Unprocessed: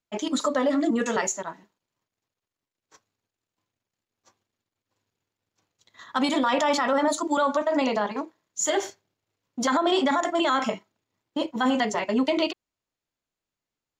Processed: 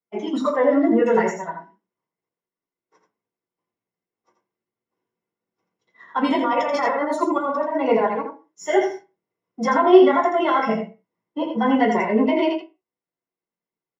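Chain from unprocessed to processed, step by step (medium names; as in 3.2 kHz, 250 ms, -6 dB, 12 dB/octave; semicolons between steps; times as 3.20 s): spectral noise reduction 9 dB; 6.28–8.13 s: compressor with a negative ratio -26 dBFS, ratio -0.5; saturation -13.5 dBFS, distortion -25 dB; delay 83 ms -6 dB; reverberation RT60 0.35 s, pre-delay 3 ms, DRR -8.5 dB; trim -16.5 dB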